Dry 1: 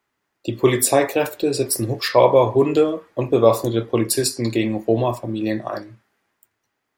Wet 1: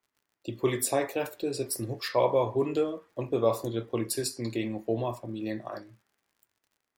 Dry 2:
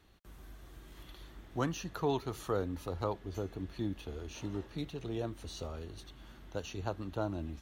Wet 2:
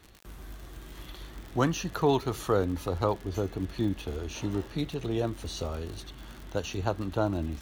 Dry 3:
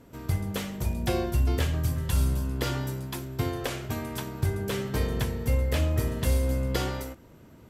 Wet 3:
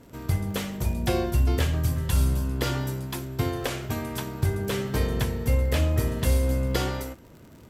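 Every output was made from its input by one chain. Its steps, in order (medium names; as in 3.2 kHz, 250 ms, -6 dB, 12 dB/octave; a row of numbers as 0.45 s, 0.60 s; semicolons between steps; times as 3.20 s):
crackle 77 per s -44 dBFS; peak normalisation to -12 dBFS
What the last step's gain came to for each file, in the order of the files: -11.0 dB, +7.5 dB, +2.5 dB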